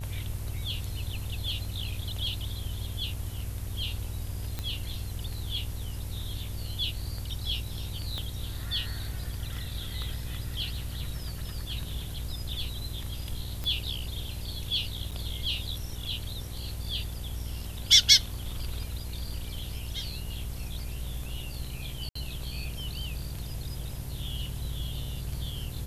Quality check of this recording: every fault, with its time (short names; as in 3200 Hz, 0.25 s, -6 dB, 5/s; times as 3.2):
buzz 60 Hz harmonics 17 -38 dBFS
4.59 pop -18 dBFS
8.18 pop -21 dBFS
13.64 pop -19 dBFS
15.11–15.12 gap 6.7 ms
22.09–22.15 gap 64 ms